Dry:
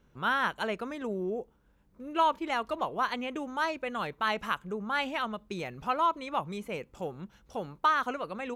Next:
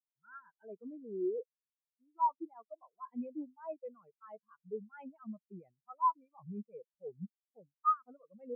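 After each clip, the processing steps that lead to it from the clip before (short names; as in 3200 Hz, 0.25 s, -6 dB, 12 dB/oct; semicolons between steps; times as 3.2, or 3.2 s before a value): reverse; compressor 5:1, threshold -39 dBFS, peak gain reduction 16.5 dB; reverse; sample leveller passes 1; spectral expander 4:1; gain +5.5 dB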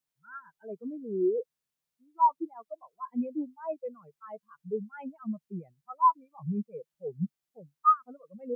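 bell 150 Hz +9 dB 0.64 oct; gain +7.5 dB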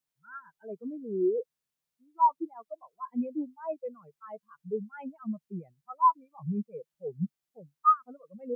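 nothing audible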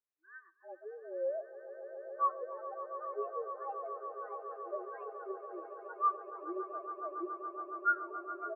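swelling echo 0.14 s, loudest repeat 8, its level -13.5 dB; mistuned SSB +170 Hz 160–2300 Hz; echo 70 ms -24 dB; gain -8.5 dB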